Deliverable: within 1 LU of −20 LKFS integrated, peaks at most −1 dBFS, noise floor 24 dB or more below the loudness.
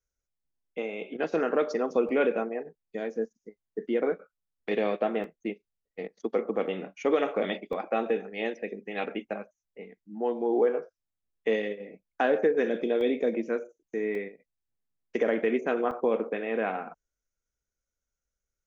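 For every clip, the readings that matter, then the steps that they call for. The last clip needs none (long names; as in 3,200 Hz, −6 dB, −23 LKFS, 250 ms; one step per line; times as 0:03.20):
number of dropouts 6; longest dropout 1.3 ms; integrated loudness −29.5 LKFS; sample peak −13.0 dBFS; target loudness −20.0 LKFS
→ repair the gap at 0:02.09/0:05.24/0:07.73/0:13.01/0:14.15/0:15.91, 1.3 ms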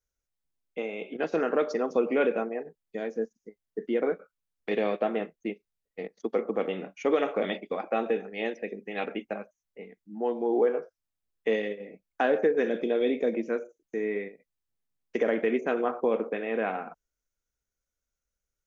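number of dropouts 0; integrated loudness −29.5 LKFS; sample peak −13.0 dBFS; target loudness −20.0 LKFS
→ level +9.5 dB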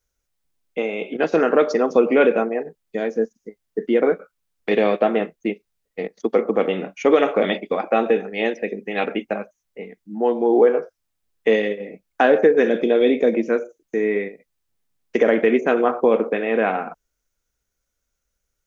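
integrated loudness −20.0 LKFS; sample peak −3.5 dBFS; background noise floor −78 dBFS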